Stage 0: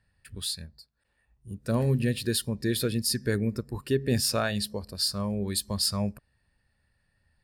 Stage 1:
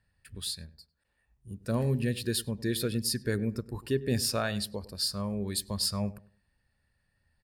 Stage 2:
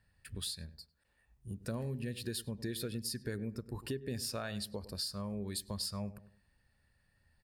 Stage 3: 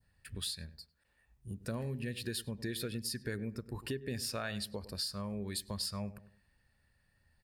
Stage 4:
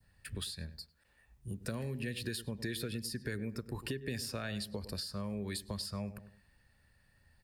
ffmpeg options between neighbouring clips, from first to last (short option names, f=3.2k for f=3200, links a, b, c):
-filter_complex "[0:a]asplit=2[a][b];[b]adelay=100,lowpass=f=1.4k:p=1,volume=-17dB,asplit=2[c][d];[d]adelay=100,lowpass=f=1.4k:p=1,volume=0.27,asplit=2[e][f];[f]adelay=100,lowpass=f=1.4k:p=1,volume=0.27[g];[a][c][e][g]amix=inputs=4:normalize=0,volume=-3dB"
-af "acompressor=threshold=-39dB:ratio=4,volume=1.5dB"
-af "adynamicequalizer=threshold=0.00126:dfrequency=2100:dqfactor=1:tfrequency=2100:tqfactor=1:attack=5:release=100:ratio=0.375:range=2.5:mode=boostabove:tftype=bell"
-filter_complex "[0:a]acrossover=split=290|640|1400[a][b][c][d];[a]acompressor=threshold=-43dB:ratio=4[e];[b]acompressor=threshold=-48dB:ratio=4[f];[c]acompressor=threshold=-59dB:ratio=4[g];[d]acompressor=threshold=-45dB:ratio=4[h];[e][f][g][h]amix=inputs=4:normalize=0,volume=4.5dB"